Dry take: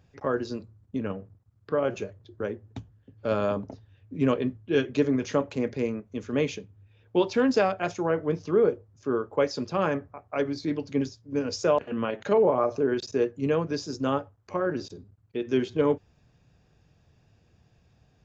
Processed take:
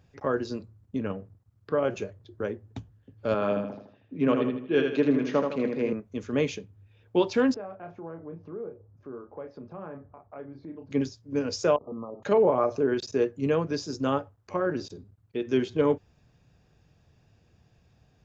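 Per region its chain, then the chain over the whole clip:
3.34–5.93 s: band-pass 170–3500 Hz + feedback delay 79 ms, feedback 41%, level -5 dB
7.54–10.91 s: low-pass 1.2 kHz + doubling 30 ms -6.5 dB + compression 2:1, threshold -48 dBFS
11.76–12.23 s: compression, threshold -33 dBFS + brick-wall FIR low-pass 1.3 kHz
whole clip: none

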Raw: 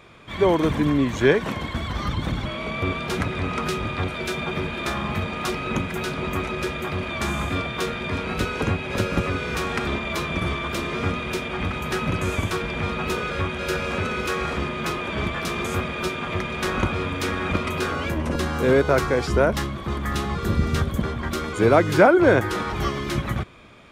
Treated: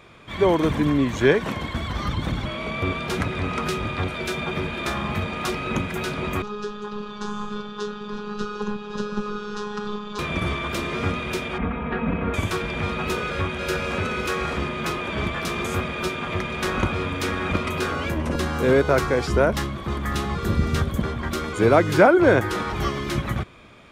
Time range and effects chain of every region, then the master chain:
6.42–10.19 s: low-pass 6.2 kHz 24 dB/octave + robot voice 208 Hz + static phaser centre 430 Hz, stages 8
11.58–12.34 s: Gaussian low-pass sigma 3.8 samples + comb 4.3 ms, depth 81%
whole clip: none

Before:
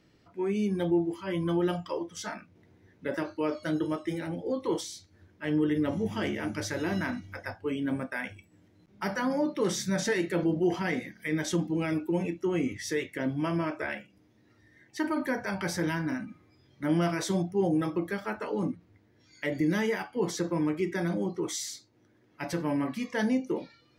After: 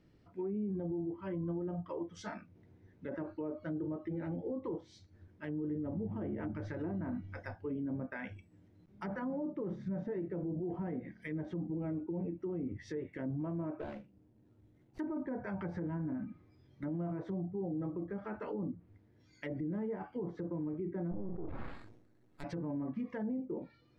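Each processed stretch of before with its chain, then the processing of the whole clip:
13.80–14.99 s: median filter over 25 samples + band-stop 1.2 kHz, Q 15
21.11–22.44 s: partial rectifier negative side -12 dB + sample-rate reducer 6 kHz + decay stretcher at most 70 dB/s
whole clip: tilt EQ -2 dB/octave; low-pass that closes with the level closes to 840 Hz, closed at -24 dBFS; peak limiter -24.5 dBFS; trim -6.5 dB

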